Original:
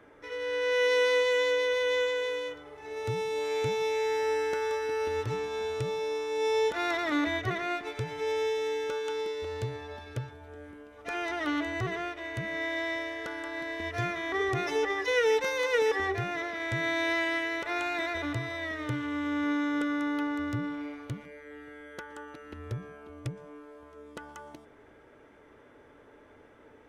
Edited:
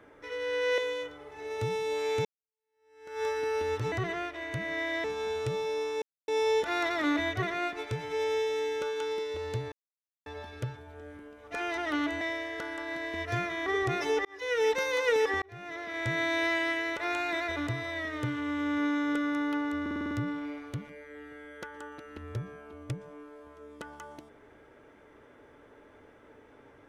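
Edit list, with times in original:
0.78–2.24 s: delete
3.71–4.69 s: fade in exponential
6.36 s: insert silence 0.26 s
9.80 s: insert silence 0.54 s
11.75–12.87 s: move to 5.38 s
14.91–15.38 s: fade in
16.08–16.71 s: fade in
20.47 s: stutter 0.05 s, 7 plays

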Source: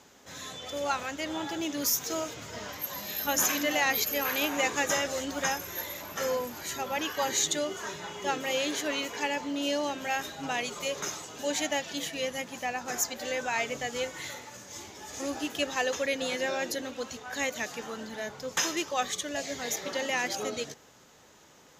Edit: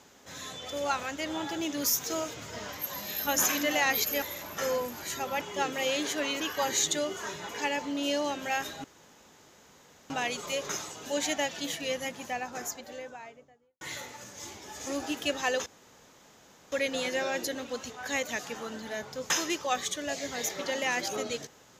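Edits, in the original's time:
4.22–5.81 s: delete
8.09–9.08 s: move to 7.00 s
10.43 s: insert room tone 1.26 s
12.32–14.14 s: studio fade out
15.99 s: insert room tone 1.06 s

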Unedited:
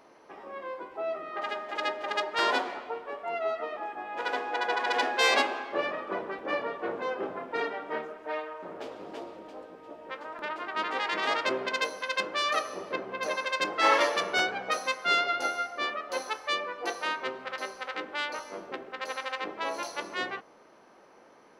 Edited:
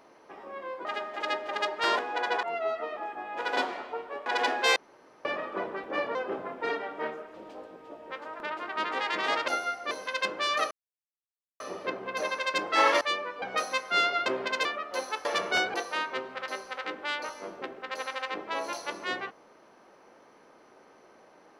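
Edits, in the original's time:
0.85–1.40 s: delete
2.54–3.23 s: swap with 4.37–4.81 s
5.31–5.80 s: room tone
6.70–7.06 s: delete
8.25–9.33 s: delete
11.47–11.86 s: swap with 15.40–15.83 s
12.66 s: insert silence 0.89 s
14.07–14.56 s: swap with 16.43–16.84 s

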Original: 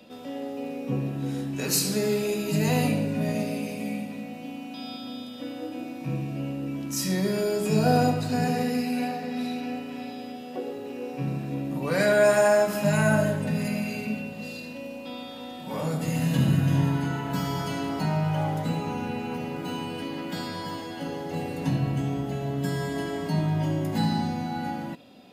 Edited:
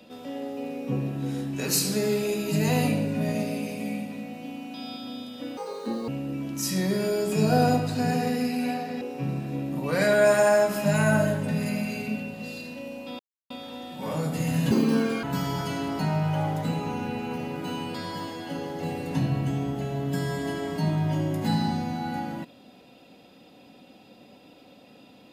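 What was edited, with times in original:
5.57–6.42 s: speed 166%
9.35–11.00 s: delete
15.18 s: insert silence 0.31 s
16.39–17.24 s: speed 163%
19.95–20.45 s: delete

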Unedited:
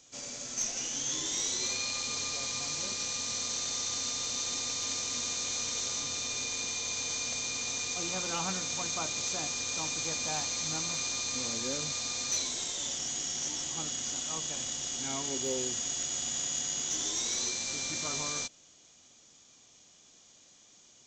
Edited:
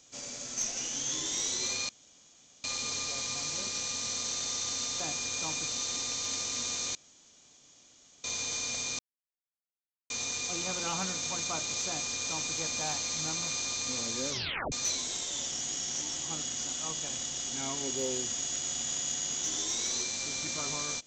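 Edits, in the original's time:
1.89 s: insert room tone 0.75 s
5.53–6.82 s: room tone
7.57 s: insert silence 1.11 s
9.35–10.02 s: copy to 4.25 s
11.77 s: tape stop 0.42 s

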